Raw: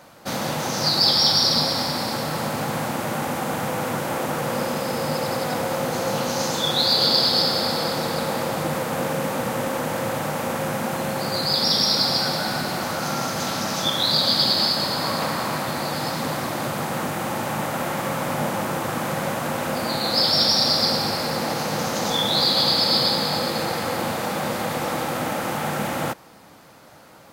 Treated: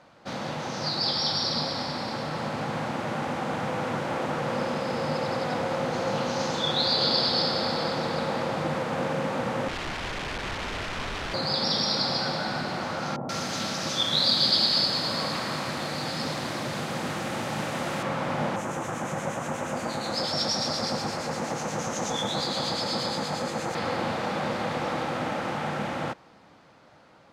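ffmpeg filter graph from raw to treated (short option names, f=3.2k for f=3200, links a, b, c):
-filter_complex "[0:a]asettb=1/sr,asplit=3[a][b][c];[a]atrim=end=9.684[d];[b]atrim=start=9.68:end=11.34,asetpts=PTS-STARTPTS,afade=t=in:d=0.004:c=qsin,afade=t=out:st=1.656:d=0.004:c=qsin,lowpass=f=1.6k:w=0.5412,lowpass=f=1.6k:w=1.3066,aeval=exprs='(mod(16.8*val(0)+1,2)-1)/16.8':c=same,lowshelf=f=76:g=10[e];[c]atrim=start=11.336[f];[d][e]acrossfade=d=0.004:c1=hsin:c2=qsin[g];[g][f]acrossfade=d=0.004:c1=qsin:c2=hsin,asettb=1/sr,asplit=3[h][i][j];[h]atrim=end=13.164[k];[i]atrim=start=13.16:end=18.03,asetpts=PTS-STARTPTS,afade=t=in:d=0.004:c=qsin,afade=t=out:st=4.866:d=0.004:c=qsin,highshelf=f=5k:g=12,acrossover=split=920[l][m];[m]adelay=130[n];[l][n]amix=inputs=2:normalize=0,atrim=end_sample=214767[o];[j]atrim=start=18.026[p];[k][o]acrossfade=d=0.004:c1=hsin:c2=qsin[q];[q][p]acrossfade=d=0.004:c1=qsin:c2=hsin,asettb=1/sr,asplit=3[r][s][t];[r]atrim=end=18.564[u];[s]atrim=start=18.56:end=23.75,asetpts=PTS-STARTPTS,afade=t=in:d=0.004:c=qsin,afade=t=out:st=5.186:d=0.004:c=qsin,highshelf=f=5.5k:t=q:w=3:g=6.5,acrossover=split=1800[v][w];[v]aeval=exprs='val(0)*(1-0.5/2+0.5/2*cos(2*PI*8.4*n/s))':c=same[x];[w]aeval=exprs='val(0)*(1-0.5/2-0.5/2*cos(2*PI*8.4*n/s))':c=same[y];[x][y]amix=inputs=2:normalize=0[z];[t]atrim=start=23.746[aa];[u][z]acrossfade=d=0.004:c1=hsin:c2=qsin[ab];[ab][aa]acrossfade=d=0.004:c1=qsin:c2=hsin,lowpass=4.6k,dynaudnorm=f=980:g=5:m=3.5dB,volume=-6.5dB"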